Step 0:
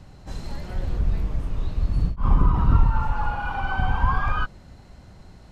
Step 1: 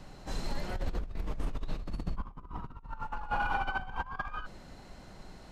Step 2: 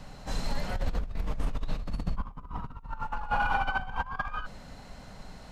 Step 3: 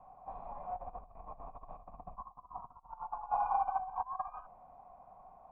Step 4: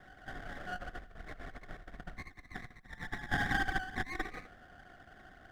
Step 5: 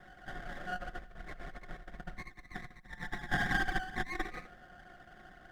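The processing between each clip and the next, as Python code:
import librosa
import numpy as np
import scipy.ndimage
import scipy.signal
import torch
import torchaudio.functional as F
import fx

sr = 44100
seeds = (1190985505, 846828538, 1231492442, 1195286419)

y1 = fx.peak_eq(x, sr, hz=83.0, db=-12.0, octaves=1.7)
y1 = fx.over_compress(y1, sr, threshold_db=-29.0, ratio=-0.5)
y1 = F.gain(torch.from_numpy(y1), -4.5).numpy()
y2 = fx.peak_eq(y1, sr, hz=350.0, db=-14.0, octaves=0.23)
y2 = F.gain(torch.from_numpy(y2), 4.0).numpy()
y3 = fx.formant_cascade(y2, sr, vowel='a')
y3 = F.gain(torch.from_numpy(y3), 5.0).numpy()
y4 = fx.lower_of_two(y3, sr, delay_ms=0.52)
y4 = y4 + 10.0 ** (-20.5 / 20.0) * np.pad(y4, (int(87 * sr / 1000.0), 0))[:len(y4)]
y4 = F.gain(torch.from_numpy(y4), 4.0).numpy()
y5 = y4 + 0.42 * np.pad(y4, (int(5.6 * sr / 1000.0), 0))[:len(y4)]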